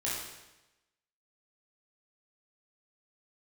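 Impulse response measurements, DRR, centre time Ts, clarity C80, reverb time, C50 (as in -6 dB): -7.0 dB, 70 ms, 3.0 dB, 1.0 s, 0.0 dB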